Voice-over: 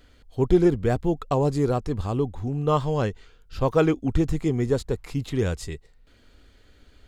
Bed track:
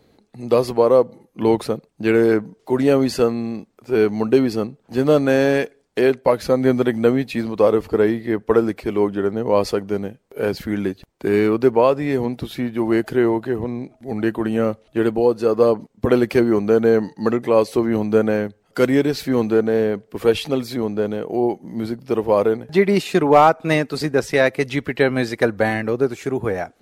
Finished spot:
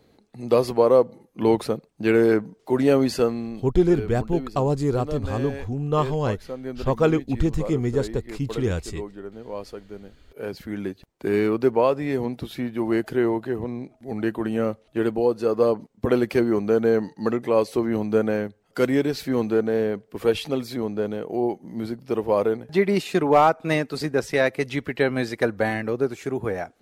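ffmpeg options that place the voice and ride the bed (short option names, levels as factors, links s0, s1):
-filter_complex "[0:a]adelay=3250,volume=1[s0];[1:a]volume=2.99,afade=t=out:st=3.07:d=0.97:silence=0.199526,afade=t=in:st=10.06:d=1.23:silence=0.251189[s1];[s0][s1]amix=inputs=2:normalize=0"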